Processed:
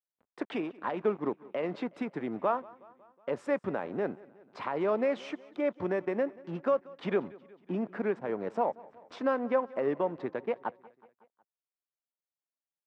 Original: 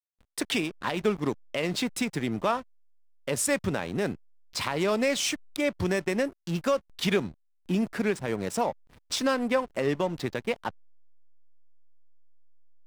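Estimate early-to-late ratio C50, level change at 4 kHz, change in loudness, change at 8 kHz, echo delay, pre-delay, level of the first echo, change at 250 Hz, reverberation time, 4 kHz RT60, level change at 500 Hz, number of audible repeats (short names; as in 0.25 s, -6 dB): none, -18.5 dB, -4.0 dB, under -30 dB, 0.184 s, none, -22.0 dB, -5.5 dB, none, none, -1.5 dB, 3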